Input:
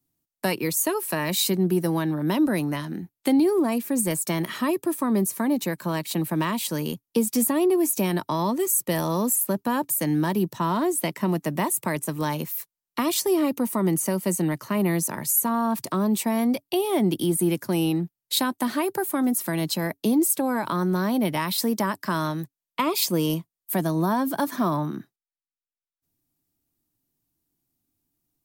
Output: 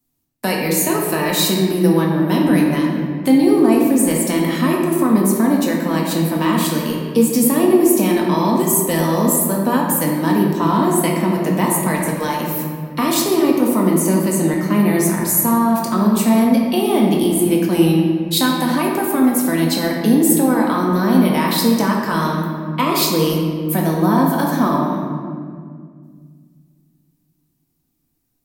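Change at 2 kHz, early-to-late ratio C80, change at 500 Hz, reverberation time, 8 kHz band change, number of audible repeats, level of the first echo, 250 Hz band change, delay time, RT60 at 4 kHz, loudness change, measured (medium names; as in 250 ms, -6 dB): +8.0 dB, 3.0 dB, +8.0 dB, 2.0 s, +5.5 dB, no echo, no echo, +9.5 dB, no echo, 1.2 s, +8.0 dB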